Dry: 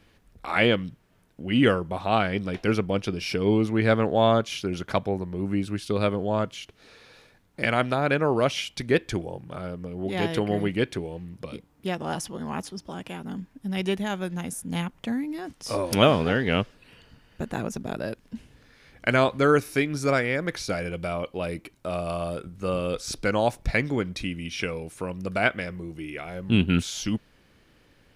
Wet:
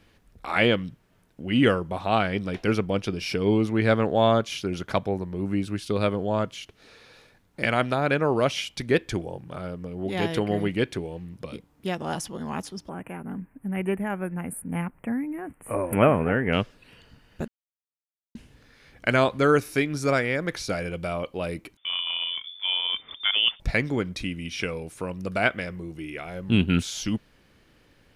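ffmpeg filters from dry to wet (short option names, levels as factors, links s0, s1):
-filter_complex "[0:a]asettb=1/sr,asplit=3[s0][s1][s2];[s0]atrim=end=12.894[s3];[s1]atrim=start=12.89:end=16.53,asetpts=PTS-STARTPTS,afade=t=in:d=0.004:c=qsin,afade=t=out:st=3.636:d=0.004:c=qsin,asuperstop=centerf=4800:order=8:qfactor=0.76[s4];[s2]atrim=start=16.526[s5];[s3][s4]acrossfade=d=0.004:c1=hsin:c2=qsin[s6];[s6][s5]acrossfade=d=0.004:c1=qsin:c2=hsin,asettb=1/sr,asplit=3[s7][s8][s9];[s7]atrim=end=21.774[s10];[s8]atrim=start=21.77:end=23.6,asetpts=PTS-STARTPTS,afade=t=in:d=0.004:c=qsin,afade=t=out:st=1.826:d=0.004:c=qsin,lowpass=f=3100:t=q:w=0.5098,lowpass=f=3100:t=q:w=0.6013,lowpass=f=3100:t=q:w=0.9,lowpass=f=3100:t=q:w=2.563,afreqshift=-3600[s11];[s9]atrim=start=23.596[s12];[s10][s11]acrossfade=d=0.004:c1=hsin:c2=qsin[s13];[s13][s12]acrossfade=d=0.004:c1=qsin:c2=hsin,asplit=3[s14][s15][s16];[s14]atrim=end=17.48,asetpts=PTS-STARTPTS,afade=t=out:st=17.476:d=0.004:c=hsin[s17];[s15]atrim=start=17.48:end=18.35,asetpts=PTS-STARTPTS,volume=0[s18];[s16]atrim=start=18.35,asetpts=PTS-STARTPTS,afade=t=in:d=0.004:c=hsin[s19];[s17][s18][s19]concat=n=3:v=0:a=1"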